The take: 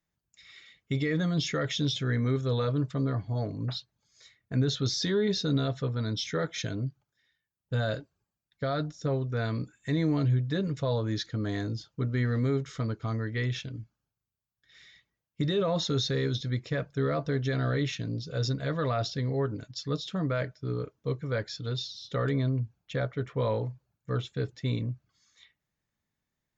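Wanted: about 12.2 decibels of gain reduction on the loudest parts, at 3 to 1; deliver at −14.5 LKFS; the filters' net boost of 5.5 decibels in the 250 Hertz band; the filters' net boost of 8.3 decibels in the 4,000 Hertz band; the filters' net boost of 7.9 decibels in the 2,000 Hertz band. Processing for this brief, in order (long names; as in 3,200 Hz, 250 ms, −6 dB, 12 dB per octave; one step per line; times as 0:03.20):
parametric band 250 Hz +7 dB
parametric band 2,000 Hz +8 dB
parametric band 4,000 Hz +7.5 dB
downward compressor 3 to 1, threshold −35 dBFS
level +21.5 dB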